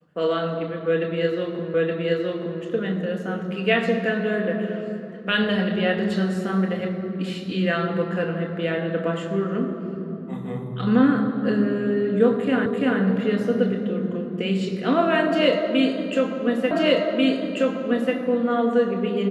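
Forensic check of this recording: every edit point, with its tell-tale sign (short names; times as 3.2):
1.74 repeat of the last 0.87 s
12.66 repeat of the last 0.34 s
16.71 repeat of the last 1.44 s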